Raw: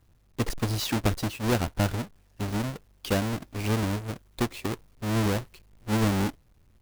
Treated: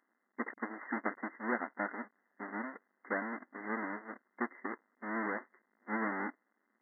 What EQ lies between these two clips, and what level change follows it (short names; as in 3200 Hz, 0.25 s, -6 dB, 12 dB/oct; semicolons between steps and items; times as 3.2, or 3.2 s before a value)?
brick-wall FIR band-pass 210–2100 Hz; low shelf 360 Hz -7 dB; bell 490 Hz -13.5 dB 2.8 oct; +5.0 dB